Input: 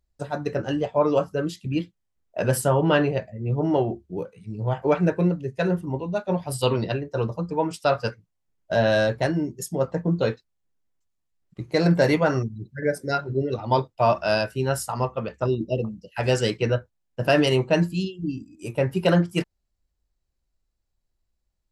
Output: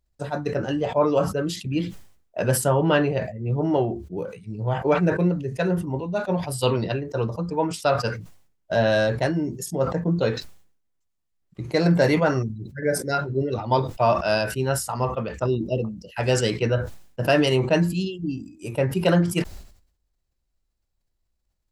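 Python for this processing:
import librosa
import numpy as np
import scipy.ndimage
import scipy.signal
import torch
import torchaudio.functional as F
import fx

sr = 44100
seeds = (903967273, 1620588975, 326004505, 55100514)

y = fx.sustainer(x, sr, db_per_s=94.0)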